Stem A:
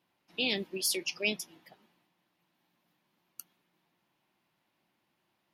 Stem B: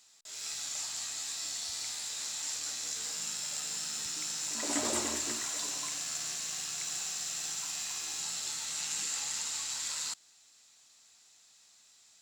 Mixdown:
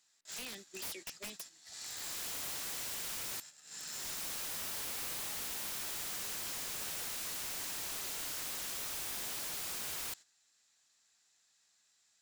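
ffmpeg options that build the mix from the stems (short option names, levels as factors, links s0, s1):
-filter_complex "[0:a]highshelf=f=2700:g=8.5,acrossover=split=330|6500[s0][s1][s2];[s0]acompressor=threshold=0.00398:ratio=4[s3];[s1]acompressor=threshold=0.0178:ratio=4[s4];[s2]acompressor=threshold=0.0251:ratio=4[s5];[s3][s4][s5]amix=inputs=3:normalize=0,volume=0.355,asplit=2[s6][s7];[1:a]volume=0.944[s8];[s7]apad=whole_len=538809[s9];[s8][s9]sidechaincompress=threshold=0.00224:ratio=10:attack=6.4:release=695[s10];[s6][s10]amix=inputs=2:normalize=0,agate=range=0.282:threshold=0.00398:ratio=16:detection=peak,equalizer=f=1700:t=o:w=0.38:g=7,aeval=exprs='(mod(59.6*val(0)+1,2)-1)/59.6':c=same"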